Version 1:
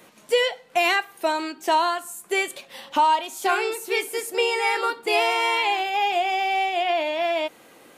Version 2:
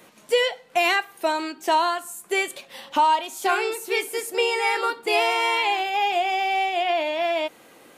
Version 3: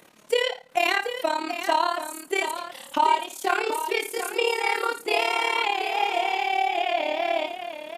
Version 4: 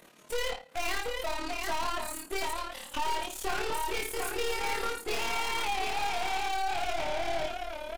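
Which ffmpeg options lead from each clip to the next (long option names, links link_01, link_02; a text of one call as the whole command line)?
ffmpeg -i in.wav -af anull out.wav
ffmpeg -i in.wav -filter_complex "[0:a]tremolo=f=36:d=0.824,asplit=2[link_01][link_02];[link_02]aecho=0:1:56|86|731:0.251|0.126|0.355[link_03];[link_01][link_03]amix=inputs=2:normalize=0,volume=1dB" out.wav
ffmpeg -i in.wav -filter_complex "[0:a]aeval=exprs='(tanh(44.7*val(0)+0.8)-tanh(0.8))/44.7':channel_layout=same,asplit=2[link_01][link_02];[link_02]adelay=21,volume=-4dB[link_03];[link_01][link_03]amix=inputs=2:normalize=0,volume=1.5dB" out.wav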